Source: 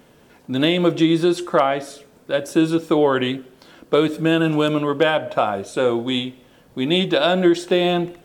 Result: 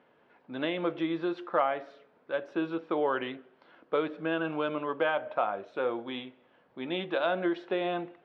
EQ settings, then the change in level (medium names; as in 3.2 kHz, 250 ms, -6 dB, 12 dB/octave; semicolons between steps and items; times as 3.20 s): band-pass filter 1.3 kHz, Q 0.57; distance through air 290 m; -6.5 dB